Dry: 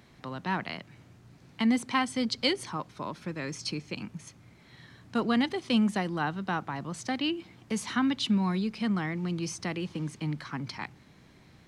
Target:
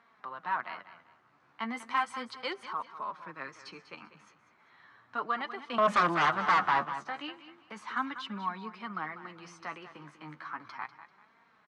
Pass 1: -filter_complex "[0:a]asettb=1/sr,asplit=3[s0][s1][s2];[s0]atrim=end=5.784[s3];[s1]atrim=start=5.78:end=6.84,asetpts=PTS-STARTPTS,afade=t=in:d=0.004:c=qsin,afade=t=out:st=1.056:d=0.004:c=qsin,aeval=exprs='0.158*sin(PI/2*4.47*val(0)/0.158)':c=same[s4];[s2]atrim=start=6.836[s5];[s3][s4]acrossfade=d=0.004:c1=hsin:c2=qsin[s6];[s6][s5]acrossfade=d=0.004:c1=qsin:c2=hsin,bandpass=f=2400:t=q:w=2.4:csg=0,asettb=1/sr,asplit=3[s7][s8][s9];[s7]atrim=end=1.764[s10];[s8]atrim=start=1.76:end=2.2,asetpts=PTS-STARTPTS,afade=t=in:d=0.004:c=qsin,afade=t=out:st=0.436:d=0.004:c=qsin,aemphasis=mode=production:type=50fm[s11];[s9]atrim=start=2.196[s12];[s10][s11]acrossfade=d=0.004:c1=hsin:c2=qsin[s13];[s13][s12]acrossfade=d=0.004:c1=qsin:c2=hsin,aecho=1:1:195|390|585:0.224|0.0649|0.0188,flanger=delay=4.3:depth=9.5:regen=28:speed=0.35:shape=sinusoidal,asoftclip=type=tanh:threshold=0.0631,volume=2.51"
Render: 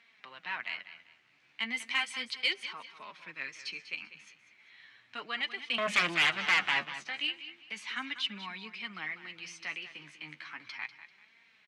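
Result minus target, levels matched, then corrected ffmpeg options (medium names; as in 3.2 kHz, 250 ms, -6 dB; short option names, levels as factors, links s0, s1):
1 kHz band -10.0 dB
-filter_complex "[0:a]asettb=1/sr,asplit=3[s0][s1][s2];[s0]atrim=end=5.784[s3];[s1]atrim=start=5.78:end=6.84,asetpts=PTS-STARTPTS,afade=t=in:d=0.004:c=qsin,afade=t=out:st=1.056:d=0.004:c=qsin,aeval=exprs='0.158*sin(PI/2*4.47*val(0)/0.158)':c=same[s4];[s2]atrim=start=6.836[s5];[s3][s4]acrossfade=d=0.004:c1=hsin:c2=qsin[s6];[s6][s5]acrossfade=d=0.004:c1=qsin:c2=hsin,bandpass=f=1200:t=q:w=2.4:csg=0,asettb=1/sr,asplit=3[s7][s8][s9];[s7]atrim=end=1.764[s10];[s8]atrim=start=1.76:end=2.2,asetpts=PTS-STARTPTS,afade=t=in:d=0.004:c=qsin,afade=t=out:st=0.436:d=0.004:c=qsin,aemphasis=mode=production:type=50fm[s11];[s9]atrim=start=2.196[s12];[s10][s11]acrossfade=d=0.004:c1=hsin:c2=qsin[s13];[s13][s12]acrossfade=d=0.004:c1=qsin:c2=hsin,aecho=1:1:195|390|585:0.224|0.0649|0.0188,flanger=delay=4.3:depth=9.5:regen=28:speed=0.35:shape=sinusoidal,asoftclip=type=tanh:threshold=0.0631,volume=2.51"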